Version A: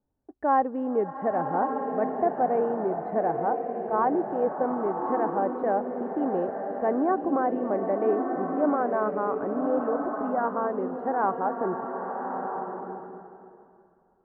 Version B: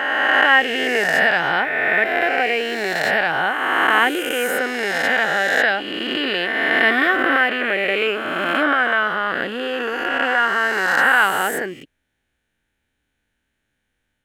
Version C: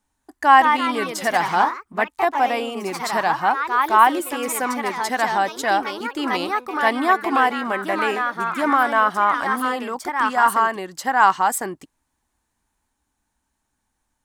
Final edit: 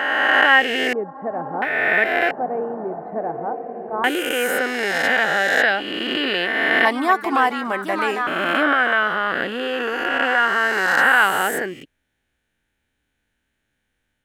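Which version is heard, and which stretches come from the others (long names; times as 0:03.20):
B
0:00.93–0:01.62: punch in from A
0:02.31–0:04.04: punch in from A
0:06.85–0:08.27: punch in from C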